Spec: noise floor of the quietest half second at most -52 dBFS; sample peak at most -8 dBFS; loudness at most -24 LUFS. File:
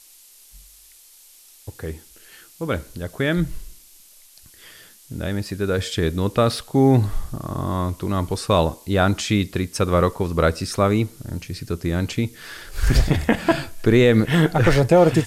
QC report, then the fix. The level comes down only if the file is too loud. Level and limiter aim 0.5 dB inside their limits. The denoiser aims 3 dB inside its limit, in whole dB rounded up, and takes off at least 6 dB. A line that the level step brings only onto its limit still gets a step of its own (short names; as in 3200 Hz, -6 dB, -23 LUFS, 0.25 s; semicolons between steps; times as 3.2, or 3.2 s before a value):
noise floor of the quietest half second -49 dBFS: fail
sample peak -2.5 dBFS: fail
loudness -21.0 LUFS: fail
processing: gain -3.5 dB; limiter -8.5 dBFS